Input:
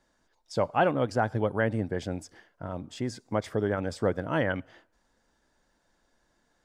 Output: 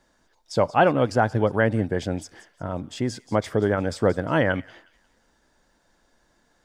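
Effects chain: thin delay 0.179 s, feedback 35%, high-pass 2800 Hz, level -14 dB; gain +6 dB

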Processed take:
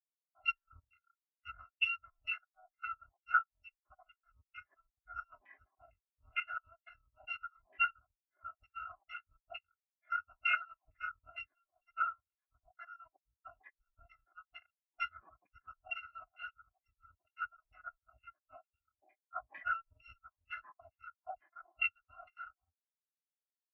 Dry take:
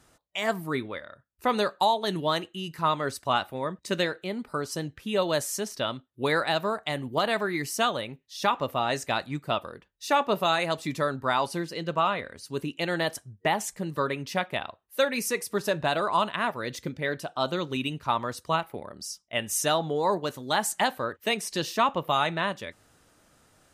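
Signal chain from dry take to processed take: FFT order left unsorted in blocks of 256 samples; LFO low-pass saw down 2.2 Hz 760–2300 Hz; spectral expander 2.5:1; gain -1.5 dB

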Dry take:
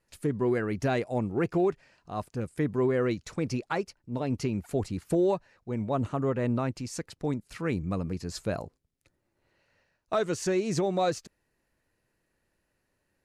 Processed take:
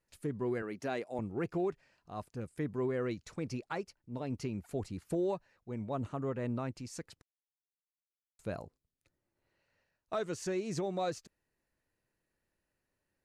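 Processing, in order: 0.62–1.19 HPF 230 Hz 12 dB/oct; 7.22–8.39 mute; gain -8 dB

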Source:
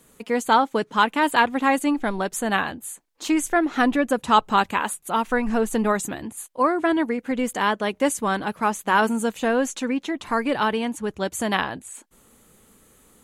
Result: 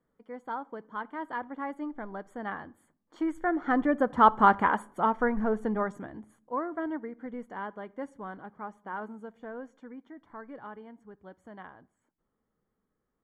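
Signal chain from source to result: Doppler pass-by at 4.59, 9 m/s, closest 4.7 m; polynomial smoothing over 41 samples; on a send: reverb RT60 0.65 s, pre-delay 6 ms, DRR 19.5 dB

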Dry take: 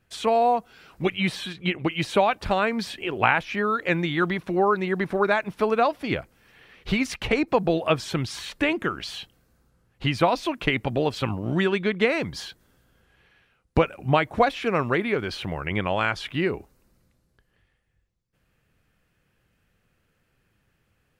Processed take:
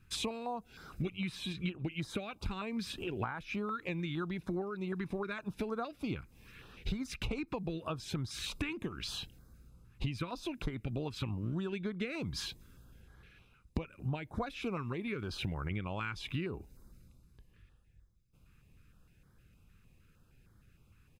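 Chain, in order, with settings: low shelf 110 Hz +7 dB; comb 0.8 ms, depth 39%; compressor 10:1, threshold -33 dBFS, peak gain reduction 22 dB; stepped notch 6.5 Hz 630–2600 Hz

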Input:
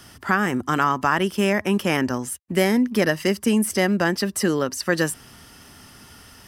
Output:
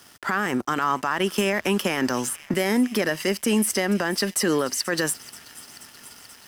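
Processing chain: HPF 320 Hz 6 dB/oct; thin delay 0.482 s, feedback 80%, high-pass 3700 Hz, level -16 dB; limiter -17 dBFS, peak gain reduction 10.5 dB; crossover distortion -49 dBFS; 1.36–2.54 three-band squash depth 100%; gain +4.5 dB

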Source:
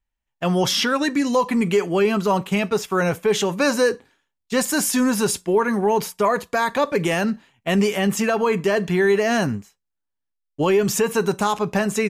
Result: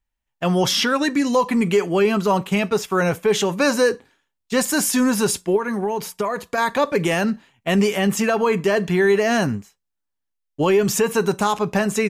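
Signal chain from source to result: 5.56–6.58 compressor, threshold -21 dBFS, peak gain reduction 7 dB; gain +1 dB

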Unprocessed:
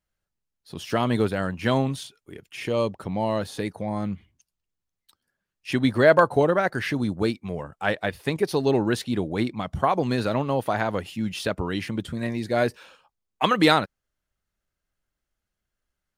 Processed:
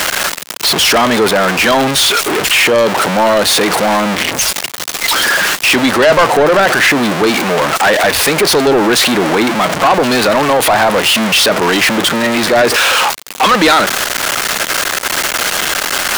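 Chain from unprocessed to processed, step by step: zero-crossing step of -19.5 dBFS; Bessel high-pass 190 Hz, order 4; overdrive pedal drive 24 dB, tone 6700 Hz, clips at -2 dBFS; gain +1 dB

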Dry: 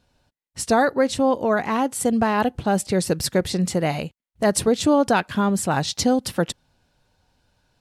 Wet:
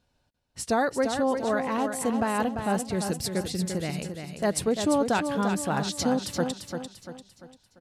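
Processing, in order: 2.8–4.01 bell 860 Hz -9.5 dB 1.3 oct; on a send: feedback echo 0.344 s, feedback 43%, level -7 dB; on the sum: gain -6.5 dB

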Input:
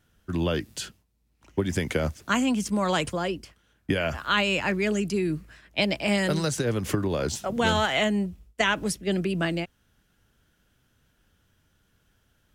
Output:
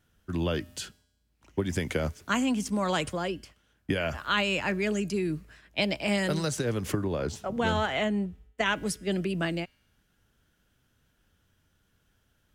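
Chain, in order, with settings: 6.92–8.66 high shelf 3300 Hz -9 dB; resonator 86 Hz, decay 1 s, harmonics odd, mix 30%

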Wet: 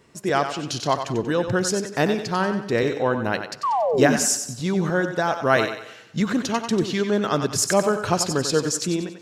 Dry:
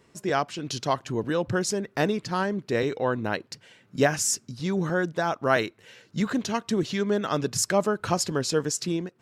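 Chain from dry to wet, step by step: painted sound fall, 3.63–4.17, 210–1200 Hz -25 dBFS; thinning echo 93 ms, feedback 41%, high-pass 300 Hz, level -8 dB; on a send at -20 dB: reverb RT60 1.2 s, pre-delay 46 ms; on the sum: gain +3.5 dB

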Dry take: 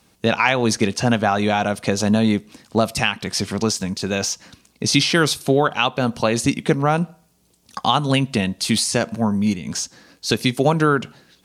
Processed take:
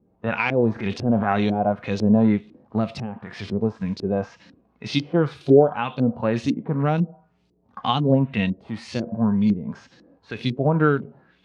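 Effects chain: 0.73–1.47 transient shaper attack -9 dB, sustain +6 dB; LFO low-pass saw up 2 Hz 310–4800 Hz; harmonic-percussive split percussive -15 dB

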